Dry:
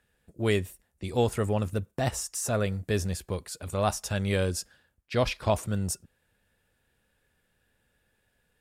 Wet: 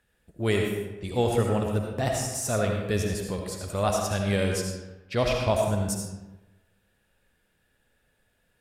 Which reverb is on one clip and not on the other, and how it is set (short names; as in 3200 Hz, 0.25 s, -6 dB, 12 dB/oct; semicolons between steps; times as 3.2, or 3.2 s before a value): digital reverb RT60 1.1 s, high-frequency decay 0.65×, pre-delay 35 ms, DRR 1 dB